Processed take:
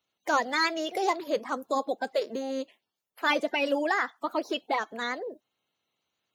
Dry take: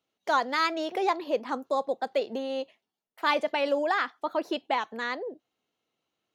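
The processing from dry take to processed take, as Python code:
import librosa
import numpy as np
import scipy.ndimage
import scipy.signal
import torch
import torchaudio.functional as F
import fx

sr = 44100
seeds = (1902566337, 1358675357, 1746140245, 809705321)

y = fx.spec_quant(x, sr, step_db=30)
y = fx.high_shelf(y, sr, hz=6600.0, db=10.0)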